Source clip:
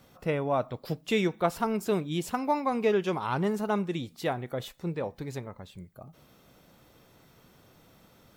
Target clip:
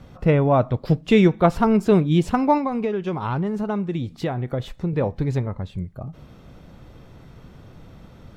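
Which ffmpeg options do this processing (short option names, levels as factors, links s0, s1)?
-filter_complex "[0:a]aemphasis=mode=reproduction:type=bsi,asettb=1/sr,asplit=3[s0][s1][s2];[s0]atrim=end=2.574[s3];[s1]atrim=start=2.57:end=4.93,asetpts=PTS-STARTPTS,afade=t=in:d=0.004:c=qsin,afade=t=out:st=2.356:d=0.004:c=qsin,acompressor=threshold=0.0355:ratio=10[s4];[s2]atrim=start=4.926[s5];[s3][s4]acrossfade=d=0.004:c1=hsin:c2=qsin[s6];[s6][s5]acrossfade=d=0.004:c1=qsin:c2=hsin,volume=2.51"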